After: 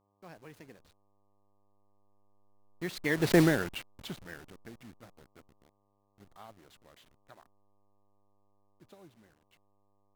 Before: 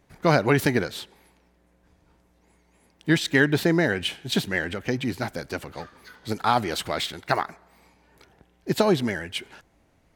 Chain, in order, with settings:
hold until the input has moved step −26 dBFS
source passing by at 0:03.38, 30 m/s, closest 2.7 metres
hum with harmonics 100 Hz, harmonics 12, −76 dBFS −2 dB per octave

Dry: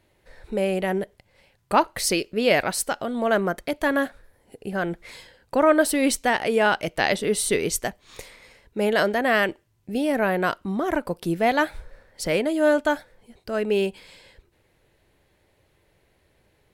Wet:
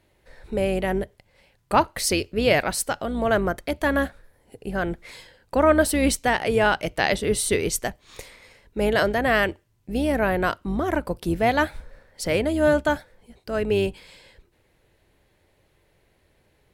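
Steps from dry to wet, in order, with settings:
sub-octave generator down 2 octaves, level −5 dB

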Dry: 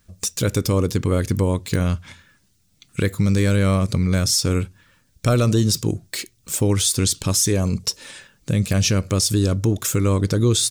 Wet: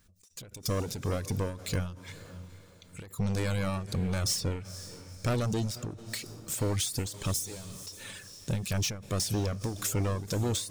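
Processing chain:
soft clipping −21 dBFS, distortion −9 dB
0:07.34–0:07.85: first-order pre-emphasis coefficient 0.8
reverb reduction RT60 0.76 s
on a send: feedback delay with all-pass diffusion 475 ms, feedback 42%, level −15 dB
on the sum: every ending faded ahead of time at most 100 dB per second
level −3.5 dB

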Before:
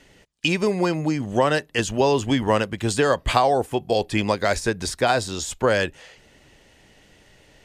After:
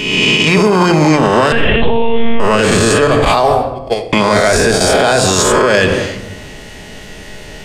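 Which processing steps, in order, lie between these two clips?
peak hold with a rise ahead of every peak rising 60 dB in 1.18 s
0:01.52–0:02.40: one-pitch LPC vocoder at 8 kHz 230 Hz
0:03.07–0:04.13: noise gate −14 dBFS, range −43 dB
rectangular room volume 2,900 cubic metres, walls furnished, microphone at 1.4 metres
boost into a limiter +19 dB
level −1 dB

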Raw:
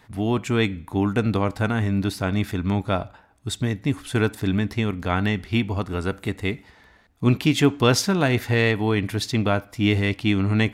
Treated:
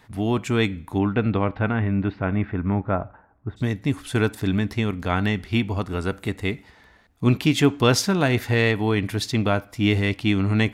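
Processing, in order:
0:00.98–0:03.56: low-pass filter 3,700 Hz → 1,500 Hz 24 dB per octave

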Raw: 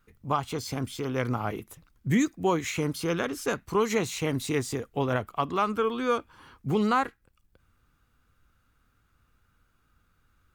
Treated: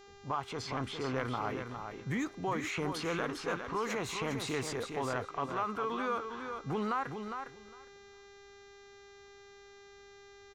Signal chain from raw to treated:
running median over 3 samples
low-pass that shuts in the quiet parts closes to 620 Hz, open at −25 dBFS
parametric band 1,100 Hz +11 dB 2.3 octaves
downward compressor, threshold −27 dBFS, peak gain reduction 16 dB
transient designer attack −5 dB, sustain +5 dB
hum with harmonics 400 Hz, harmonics 18, −52 dBFS −5 dB per octave
repeating echo 407 ms, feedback 15%, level −7 dB
level −4 dB

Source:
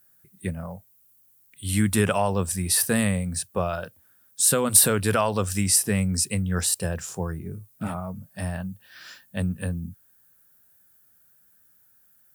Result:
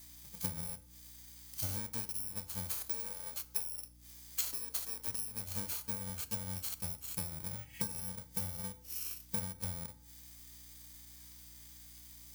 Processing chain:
samples in bit-reversed order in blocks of 64 samples
0:02.77–0:05.08: high-pass filter 280 Hz 24 dB per octave
0:07.60–0:07.91: healed spectral selection 1,600–3,300 Hz
high-shelf EQ 4,100 Hz +10 dB
harmonic and percussive parts rebalanced percussive −11 dB
downward compressor 16 to 1, threshold −37 dBFS, peak gain reduction 26 dB
transient designer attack +5 dB, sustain −10 dB
mains hum 60 Hz, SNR 20 dB
feedback delay network reverb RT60 0.73 s, low-frequency decay 0.9×, high-frequency decay 0.6×, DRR 11 dB

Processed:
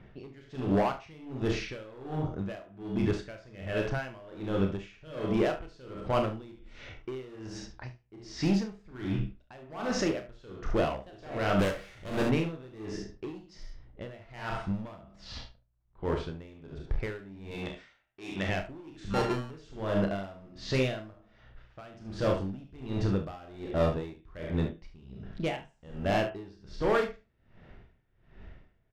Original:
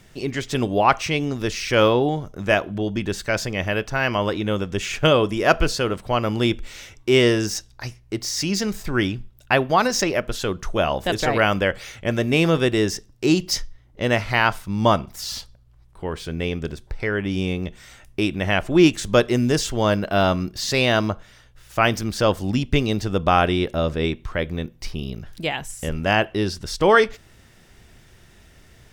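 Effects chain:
0:19.10–0:19.51: samples sorted by size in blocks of 32 samples
head-to-tape spacing loss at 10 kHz 26 dB
brickwall limiter −16 dBFS, peak gain reduction 11.5 dB
convolution reverb RT60 0.40 s, pre-delay 20 ms, DRR 10 dB
0:11.59–0:12.24: power curve on the samples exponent 0.5
hard clipping −22 dBFS, distortion −13 dB
0:17.51–0:18.49: spectral tilt +3 dB per octave
low-pass that shuts in the quiet parts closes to 2,800 Hz, open at −24.5 dBFS
ambience of single reflections 31 ms −6.5 dB, 46 ms −9 dB, 72 ms −9 dB
tremolo with a sine in dB 1.3 Hz, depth 24 dB

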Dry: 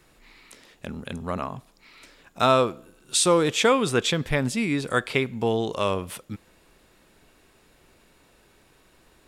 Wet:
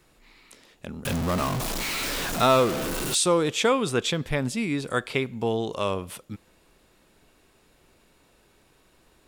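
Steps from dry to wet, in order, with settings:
0:01.05–0:03.15: converter with a step at zero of −21 dBFS
parametric band 1,800 Hz −2 dB
level −2 dB

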